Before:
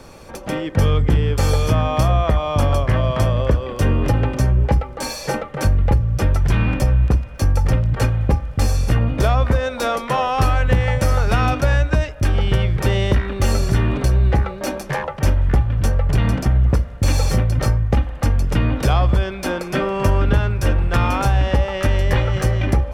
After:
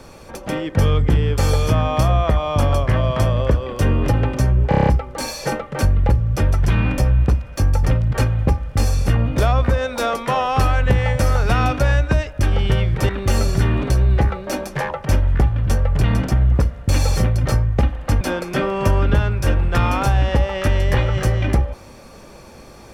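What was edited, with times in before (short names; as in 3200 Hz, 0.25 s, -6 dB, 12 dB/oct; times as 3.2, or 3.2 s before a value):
4.69 stutter 0.03 s, 7 plays
12.91–13.23 cut
18.35–19.4 cut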